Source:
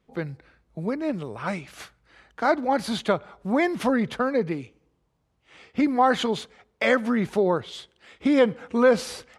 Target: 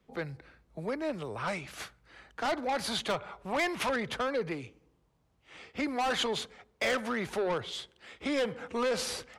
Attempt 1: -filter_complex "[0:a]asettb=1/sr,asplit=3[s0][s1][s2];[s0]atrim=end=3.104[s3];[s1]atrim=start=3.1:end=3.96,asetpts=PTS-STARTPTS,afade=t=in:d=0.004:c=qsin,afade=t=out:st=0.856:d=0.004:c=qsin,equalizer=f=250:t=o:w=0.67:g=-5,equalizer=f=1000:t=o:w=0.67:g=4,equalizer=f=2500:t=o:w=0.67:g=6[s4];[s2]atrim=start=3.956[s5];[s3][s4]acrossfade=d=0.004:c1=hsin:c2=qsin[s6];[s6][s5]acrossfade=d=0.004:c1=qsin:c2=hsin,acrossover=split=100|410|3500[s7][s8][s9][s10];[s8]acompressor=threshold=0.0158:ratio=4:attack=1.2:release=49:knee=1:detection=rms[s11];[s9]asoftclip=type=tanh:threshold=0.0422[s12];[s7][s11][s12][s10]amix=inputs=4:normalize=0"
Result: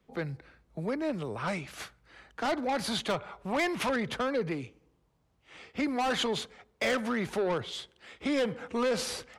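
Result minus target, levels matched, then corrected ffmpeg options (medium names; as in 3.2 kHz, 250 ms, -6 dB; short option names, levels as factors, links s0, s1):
compression: peak gain reduction -6.5 dB
-filter_complex "[0:a]asettb=1/sr,asplit=3[s0][s1][s2];[s0]atrim=end=3.104[s3];[s1]atrim=start=3.1:end=3.96,asetpts=PTS-STARTPTS,afade=t=in:d=0.004:c=qsin,afade=t=out:st=0.856:d=0.004:c=qsin,equalizer=f=250:t=o:w=0.67:g=-5,equalizer=f=1000:t=o:w=0.67:g=4,equalizer=f=2500:t=o:w=0.67:g=6[s4];[s2]atrim=start=3.956[s5];[s3][s4]acrossfade=d=0.004:c1=hsin:c2=qsin[s6];[s6][s5]acrossfade=d=0.004:c1=qsin:c2=hsin,acrossover=split=100|410|3500[s7][s8][s9][s10];[s8]acompressor=threshold=0.00562:ratio=4:attack=1.2:release=49:knee=1:detection=rms[s11];[s9]asoftclip=type=tanh:threshold=0.0422[s12];[s7][s11][s12][s10]amix=inputs=4:normalize=0"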